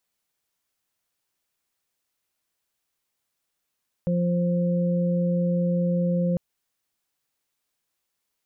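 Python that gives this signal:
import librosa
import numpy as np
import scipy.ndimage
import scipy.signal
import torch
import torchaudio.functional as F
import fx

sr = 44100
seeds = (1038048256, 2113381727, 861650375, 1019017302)

y = fx.additive_steady(sr, length_s=2.3, hz=175.0, level_db=-21, upper_db=(-18.0, -6))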